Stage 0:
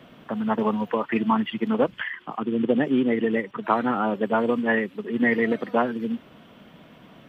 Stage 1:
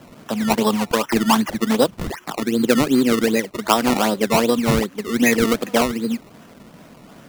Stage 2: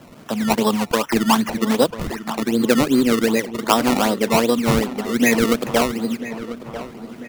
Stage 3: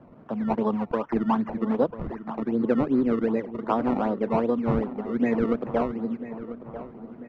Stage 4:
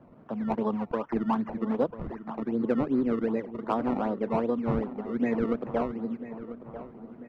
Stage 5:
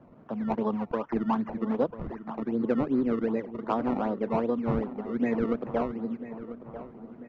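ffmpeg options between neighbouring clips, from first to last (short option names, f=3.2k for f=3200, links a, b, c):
-af "acrusher=samples=19:mix=1:aa=0.000001:lfo=1:lforange=19:lforate=2.6,volume=5dB"
-filter_complex "[0:a]asplit=2[a][b];[b]adelay=993,lowpass=f=2.6k:p=1,volume=-13dB,asplit=2[c][d];[d]adelay=993,lowpass=f=2.6k:p=1,volume=0.52,asplit=2[e][f];[f]adelay=993,lowpass=f=2.6k:p=1,volume=0.52,asplit=2[g][h];[h]adelay=993,lowpass=f=2.6k:p=1,volume=0.52,asplit=2[i][j];[j]adelay=993,lowpass=f=2.6k:p=1,volume=0.52[k];[a][c][e][g][i][k]amix=inputs=6:normalize=0"
-af "lowpass=1.1k,volume=-6dB"
-af "asoftclip=type=hard:threshold=-12dB,volume=-3.5dB"
-af "aresample=16000,aresample=44100"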